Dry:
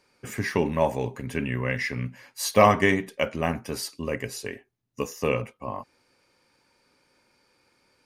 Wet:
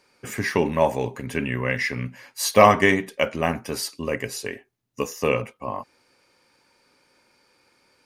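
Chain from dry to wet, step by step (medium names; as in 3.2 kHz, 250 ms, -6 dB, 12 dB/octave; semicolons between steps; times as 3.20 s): bass shelf 200 Hz -5 dB; trim +4 dB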